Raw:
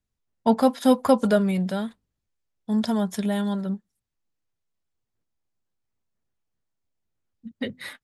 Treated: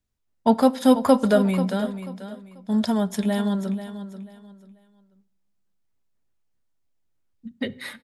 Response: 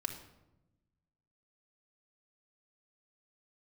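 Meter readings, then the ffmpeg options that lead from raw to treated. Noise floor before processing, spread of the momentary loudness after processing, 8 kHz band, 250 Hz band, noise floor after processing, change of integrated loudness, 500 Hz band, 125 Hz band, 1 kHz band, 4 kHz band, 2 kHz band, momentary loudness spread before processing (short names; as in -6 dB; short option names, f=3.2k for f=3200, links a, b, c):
-82 dBFS, 19 LU, +2.0 dB, +2.0 dB, -71 dBFS, +1.5 dB, +1.5 dB, +1.5 dB, +1.5 dB, +2.0 dB, +1.5 dB, 15 LU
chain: -filter_complex "[0:a]aecho=1:1:488|976|1464:0.251|0.0678|0.0183,asplit=2[a][b];[1:a]atrim=start_sample=2205[c];[b][c]afir=irnorm=-1:irlink=0,volume=-13dB[d];[a][d]amix=inputs=2:normalize=0"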